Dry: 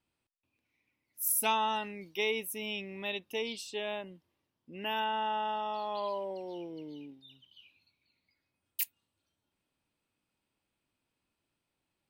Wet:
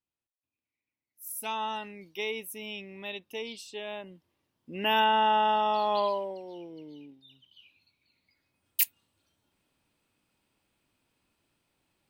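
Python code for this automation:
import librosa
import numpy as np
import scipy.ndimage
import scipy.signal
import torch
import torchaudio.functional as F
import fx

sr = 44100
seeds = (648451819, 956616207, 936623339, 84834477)

y = fx.gain(x, sr, db=fx.line((1.2, -12.5), (1.62, -2.0), (3.85, -2.0), (4.95, 9.0), (5.99, 9.0), (6.42, -1.5), (7.15, -1.5), (8.82, 8.0)))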